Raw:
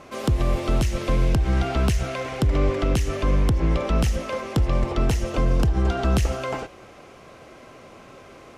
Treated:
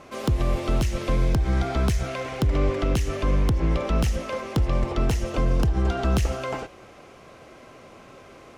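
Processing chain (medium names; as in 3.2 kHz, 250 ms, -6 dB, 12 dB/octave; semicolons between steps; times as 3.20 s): tracing distortion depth 0.036 ms; 1.13–2.06 s: band-stop 2.8 kHz, Q 9.8; trim -1.5 dB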